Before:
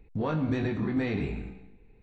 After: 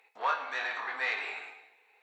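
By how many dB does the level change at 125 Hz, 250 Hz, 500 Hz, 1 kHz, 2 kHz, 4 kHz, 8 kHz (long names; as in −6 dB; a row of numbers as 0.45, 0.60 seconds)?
below −40 dB, −31.5 dB, −9.5 dB, +7.0 dB, +8.5 dB, +6.0 dB, can't be measured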